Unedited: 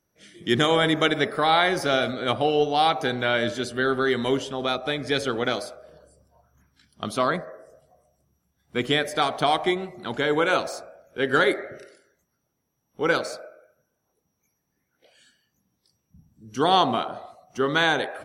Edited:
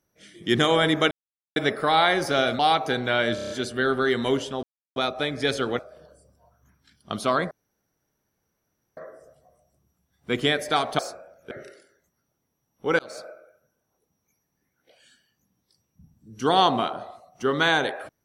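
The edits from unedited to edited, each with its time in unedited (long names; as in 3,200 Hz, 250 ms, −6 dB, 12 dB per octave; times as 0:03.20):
0:01.11: splice in silence 0.45 s
0:02.14–0:02.74: remove
0:03.50: stutter 0.03 s, 6 plays
0:04.63: splice in silence 0.33 s
0:05.46–0:05.71: remove
0:07.43: splice in room tone 1.46 s
0:09.45–0:10.67: remove
0:11.19–0:11.66: remove
0:13.14–0:13.42: fade in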